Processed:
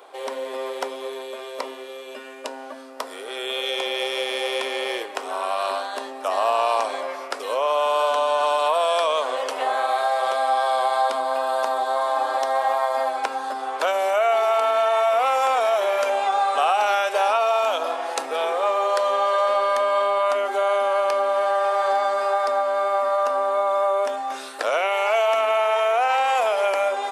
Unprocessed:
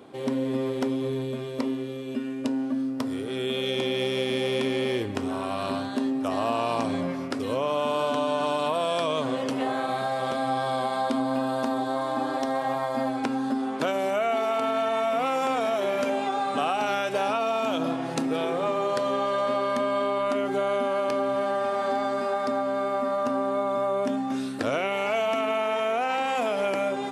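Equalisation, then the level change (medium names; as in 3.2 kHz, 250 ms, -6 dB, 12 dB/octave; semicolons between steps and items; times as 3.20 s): high-pass 430 Hz 24 dB/octave; tilt EQ +2 dB/octave; peaking EQ 840 Hz +8 dB 2.1 oct; 0.0 dB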